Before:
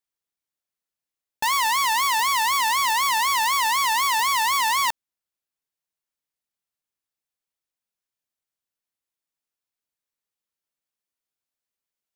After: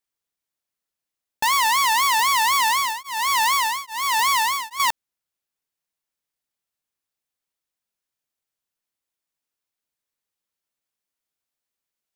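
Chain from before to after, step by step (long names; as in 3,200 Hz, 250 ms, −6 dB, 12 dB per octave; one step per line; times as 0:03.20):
0:02.62–0:04.80: tremolo along a rectified sine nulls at 1.2 Hz
level +2.5 dB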